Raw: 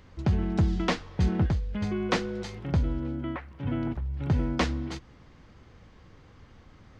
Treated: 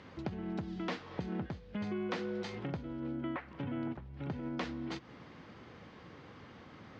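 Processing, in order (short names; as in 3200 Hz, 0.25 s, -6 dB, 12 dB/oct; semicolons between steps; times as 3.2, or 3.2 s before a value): limiter -20.5 dBFS, peak gain reduction 6 dB; compressor 4:1, threshold -39 dBFS, peak gain reduction 12.5 dB; BPF 160–4500 Hz; gain +4.5 dB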